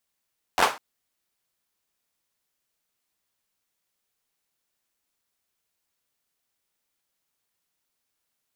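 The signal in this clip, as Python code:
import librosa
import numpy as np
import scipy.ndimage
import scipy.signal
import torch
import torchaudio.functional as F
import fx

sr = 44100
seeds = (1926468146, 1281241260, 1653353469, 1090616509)

y = fx.drum_clap(sr, seeds[0], length_s=0.2, bursts=5, spacing_ms=11, hz=860.0, decay_s=0.3)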